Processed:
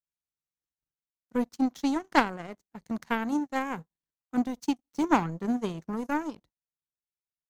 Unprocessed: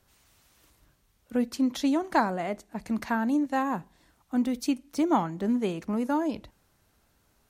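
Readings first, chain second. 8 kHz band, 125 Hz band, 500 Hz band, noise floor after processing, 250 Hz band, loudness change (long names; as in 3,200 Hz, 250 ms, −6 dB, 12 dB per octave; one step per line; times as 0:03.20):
−3.5 dB, −1.0 dB, −3.0 dB, below −85 dBFS, −2.5 dB, −1.5 dB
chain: thirty-one-band graphic EQ 160 Hz +10 dB, 630 Hz −7 dB, 2,500 Hz −7 dB, 6,300 Hz +5 dB, 10,000 Hz −5 dB
power curve on the samples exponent 2
level +7 dB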